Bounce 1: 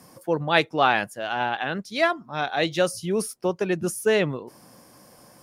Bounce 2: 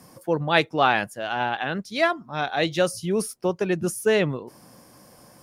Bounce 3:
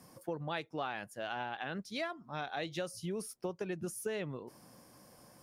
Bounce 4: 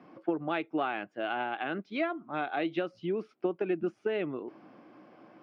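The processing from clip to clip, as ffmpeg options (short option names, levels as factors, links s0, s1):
-af "lowshelf=f=150:g=4"
-af "acompressor=threshold=0.0447:ratio=6,volume=0.398"
-af "aeval=exprs='0.0631*(cos(1*acos(clip(val(0)/0.0631,-1,1)))-cos(1*PI/2))+0.00794*(cos(2*acos(clip(val(0)/0.0631,-1,1)))-cos(2*PI/2))+0.000501*(cos(4*acos(clip(val(0)/0.0631,-1,1)))-cos(4*PI/2))':c=same,highpass=290,equalizer=f=320:t=q:w=4:g=7,equalizer=f=510:t=q:w=4:g=-7,equalizer=f=960:t=q:w=4:g=-7,equalizer=f=1800:t=q:w=4:g=-7,lowpass=f=2600:w=0.5412,lowpass=f=2600:w=1.3066,volume=2.82"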